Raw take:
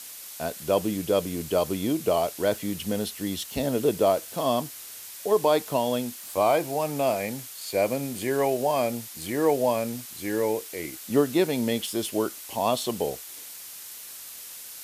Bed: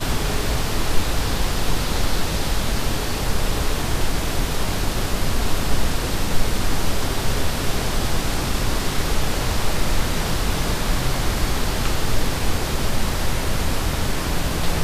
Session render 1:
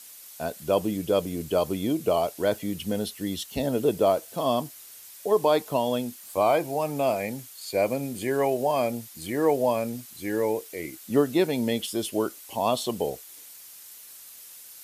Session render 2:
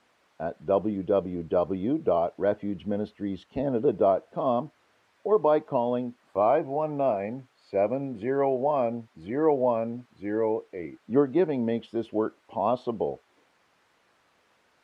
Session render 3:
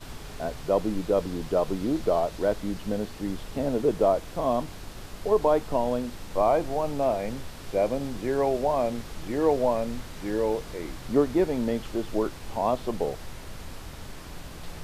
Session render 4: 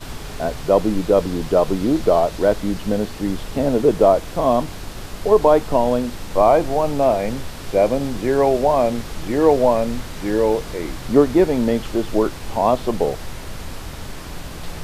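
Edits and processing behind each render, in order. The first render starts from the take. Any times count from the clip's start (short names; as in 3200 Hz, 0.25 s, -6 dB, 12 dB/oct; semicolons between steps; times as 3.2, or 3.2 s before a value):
denoiser 7 dB, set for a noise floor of -42 dBFS
LPF 1400 Hz 12 dB/oct; low shelf 85 Hz -7 dB
add bed -18.5 dB
gain +8.5 dB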